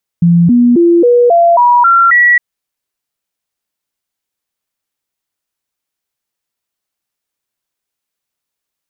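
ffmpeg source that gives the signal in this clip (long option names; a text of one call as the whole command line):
ffmpeg -f lavfi -i "aevalsrc='0.631*clip(min(mod(t,0.27),0.27-mod(t,0.27))/0.005,0,1)*sin(2*PI*171*pow(2,floor(t/0.27)/2)*mod(t,0.27))':duration=2.16:sample_rate=44100" out.wav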